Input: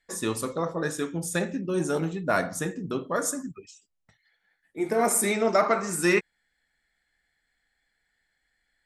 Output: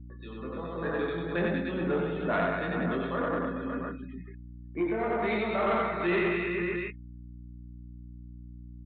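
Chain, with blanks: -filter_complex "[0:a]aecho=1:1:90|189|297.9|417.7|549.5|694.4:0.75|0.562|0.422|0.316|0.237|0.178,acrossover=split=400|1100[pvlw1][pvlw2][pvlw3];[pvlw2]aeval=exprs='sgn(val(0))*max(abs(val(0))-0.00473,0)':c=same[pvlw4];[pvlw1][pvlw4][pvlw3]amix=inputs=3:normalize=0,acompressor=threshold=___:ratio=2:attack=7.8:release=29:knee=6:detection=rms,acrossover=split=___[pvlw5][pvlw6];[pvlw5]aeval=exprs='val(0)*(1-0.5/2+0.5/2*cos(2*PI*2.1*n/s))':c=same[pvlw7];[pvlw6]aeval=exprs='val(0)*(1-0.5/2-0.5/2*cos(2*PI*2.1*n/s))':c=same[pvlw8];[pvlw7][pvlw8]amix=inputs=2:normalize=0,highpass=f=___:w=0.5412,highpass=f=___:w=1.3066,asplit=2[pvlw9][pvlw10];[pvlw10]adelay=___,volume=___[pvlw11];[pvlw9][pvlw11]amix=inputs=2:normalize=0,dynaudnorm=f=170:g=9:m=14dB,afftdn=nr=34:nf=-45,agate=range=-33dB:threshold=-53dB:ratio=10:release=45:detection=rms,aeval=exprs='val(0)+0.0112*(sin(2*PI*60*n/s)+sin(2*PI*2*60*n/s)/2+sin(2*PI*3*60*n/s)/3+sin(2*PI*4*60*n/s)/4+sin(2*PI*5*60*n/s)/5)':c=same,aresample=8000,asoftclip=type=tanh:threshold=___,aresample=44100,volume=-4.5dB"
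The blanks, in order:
-44dB, 2400, 160, 160, 23, -4dB, -16dB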